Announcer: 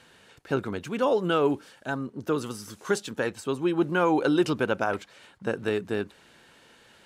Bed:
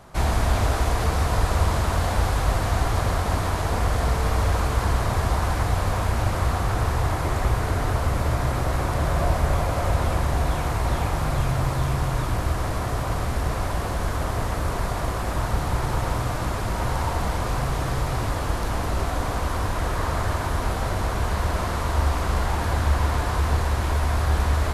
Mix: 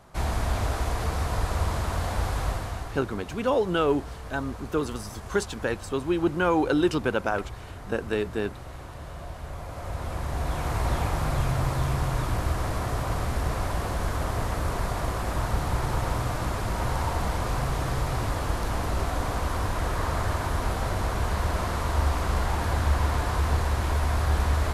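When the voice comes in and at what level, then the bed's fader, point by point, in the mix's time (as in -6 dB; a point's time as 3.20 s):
2.45 s, 0.0 dB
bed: 2.45 s -5.5 dB
3.07 s -17 dB
9.37 s -17 dB
10.78 s -2.5 dB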